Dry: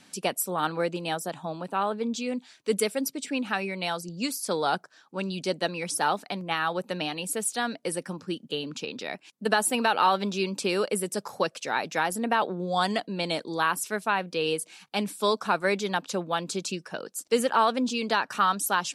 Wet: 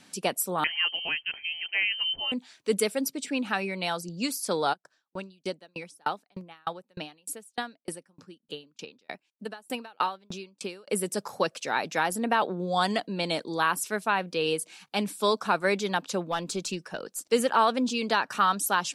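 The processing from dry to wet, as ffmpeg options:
-filter_complex "[0:a]asettb=1/sr,asplit=3[s0][s1][s2];[s0]atrim=end=0.644[s3];[s1]atrim=start=0.64:end=2.32,asetpts=PTS-STARTPTS,afade=t=in:d=0.004:c=qsin,afade=t=out:st=1.676:d=0.004:c=qsin,lowpass=f=2800:t=q:w=0.5098,lowpass=f=2800:t=q:w=0.6013,lowpass=f=2800:t=q:w=0.9,lowpass=f=2800:t=q:w=2.563,afreqshift=-3300[s4];[s2]atrim=start=2.316[s5];[s3][s4]acrossfade=d=0.004:c1=hsin:c2=qsin[s6];[s6][s5]acrossfade=d=0.004:c1=qsin:c2=hsin,asplit=3[s7][s8][s9];[s7]afade=t=out:st=4.72:d=0.02[s10];[s8]aeval=exprs='val(0)*pow(10,-39*if(lt(mod(3.3*n/s,1),2*abs(3.3)/1000),1-mod(3.3*n/s,1)/(2*abs(3.3)/1000),(mod(3.3*n/s,1)-2*abs(3.3)/1000)/(1-2*abs(3.3)/1000))/20)':c=same,afade=t=in:st=4.72:d=0.02,afade=t=out:st=10.87:d=0.02[s11];[s9]afade=t=in:st=10.87:d=0.02[s12];[s10][s11][s12]amix=inputs=3:normalize=0,asettb=1/sr,asplit=3[s13][s14][s15];[s13]atrim=end=16.314[s16];[s14]atrim=start=16.31:end=17.26,asetpts=PTS-STARTPTS,afade=t=in:d=0.004:c=qsin,afade=t=out:st=0.946:d=0.004:c=qsin,aeval=exprs='(tanh(8.91*val(0)+0.15)-tanh(0.15))/8.91':c=same[s17];[s15]atrim=start=17.256[s18];[s16][s17]acrossfade=d=0.004:c1=hsin:c2=qsin[s19];[s19][s18]acrossfade=d=0.004:c1=qsin:c2=hsin"

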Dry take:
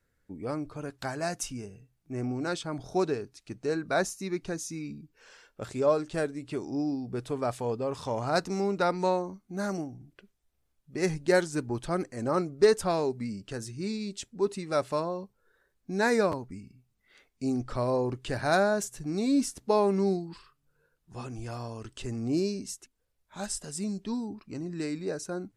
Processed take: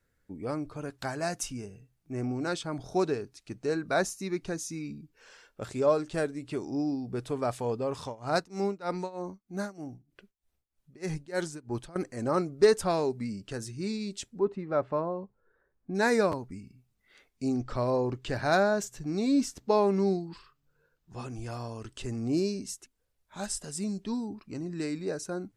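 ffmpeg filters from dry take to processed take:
-filter_complex "[0:a]asettb=1/sr,asplit=3[s0][s1][s2];[s0]atrim=end=8.024[s3];[s1]atrim=start=8.02:end=11.96,asetpts=PTS-STARTPTS,afade=t=in:d=0.004:c=qsin,afade=t=out:st=3.936:d=0.004:c=qsin,tremolo=f=3.2:d=0.92[s4];[s2]atrim=start=11.956[s5];[s3][s4]acrossfade=d=0.004:c1=hsin:c2=qsin[s6];[s6][s5]acrossfade=d=0.004:c1=qsin:c2=hsin,asplit=3[s7][s8][s9];[s7]afade=t=out:st=14.38:d=0.02[s10];[s8]lowpass=1500,afade=t=in:st=14.38:d=0.02,afade=t=out:st=15.94:d=0.02[s11];[s9]afade=t=in:st=15.94:d=0.02[s12];[s10][s11][s12]amix=inputs=3:normalize=0,asettb=1/sr,asplit=3[s13][s14][s15];[s13]atrim=end=17.484[s16];[s14]atrim=start=17.48:end=21.19,asetpts=PTS-STARTPTS,afade=t=in:d=0.004:c=qsin,afade=t=out:st=3.706:d=0.004:c=qsin,equalizer=f=10000:t=o:w=0.38:g=-12[s17];[s15]atrim=start=21.186[s18];[s16][s17]acrossfade=d=0.004:c1=hsin:c2=qsin[s19];[s19][s18]acrossfade=d=0.004:c1=qsin:c2=hsin"

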